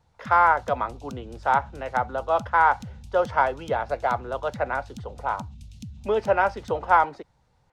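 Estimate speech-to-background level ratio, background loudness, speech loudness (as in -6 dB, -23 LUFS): 18.5 dB, -43.0 LUFS, -24.5 LUFS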